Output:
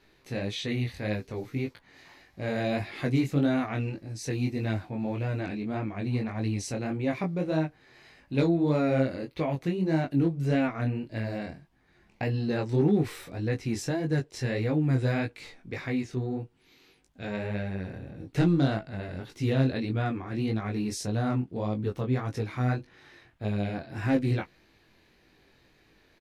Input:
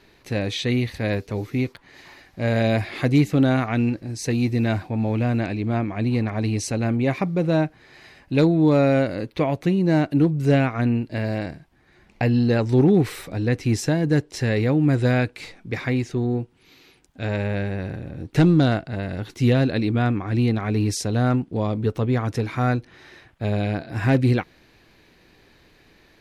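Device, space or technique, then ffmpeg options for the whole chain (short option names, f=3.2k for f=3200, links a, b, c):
double-tracked vocal: -filter_complex "[0:a]asplit=2[a][b];[b]adelay=15,volume=-13dB[c];[a][c]amix=inputs=2:normalize=0,flanger=delay=18.5:depth=5.2:speed=1.7,volume=-4.5dB"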